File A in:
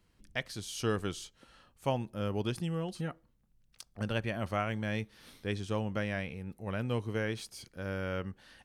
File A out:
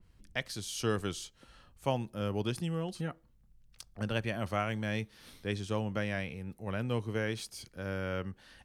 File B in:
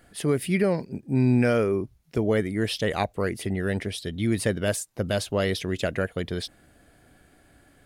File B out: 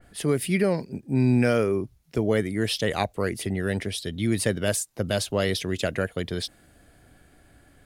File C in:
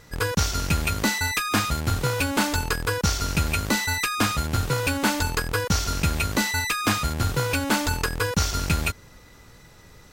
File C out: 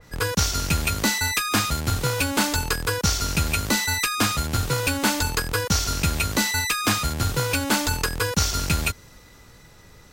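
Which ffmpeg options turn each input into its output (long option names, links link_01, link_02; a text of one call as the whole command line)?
ffmpeg -i in.wav -filter_complex "[0:a]acrossover=split=120[link_01][link_02];[link_01]acompressor=mode=upward:threshold=-51dB:ratio=2.5[link_03];[link_03][link_02]amix=inputs=2:normalize=0,adynamicequalizer=threshold=0.01:dfrequency=3100:dqfactor=0.7:tfrequency=3100:tqfactor=0.7:attack=5:release=100:ratio=0.375:range=2:mode=boostabove:tftype=highshelf" out.wav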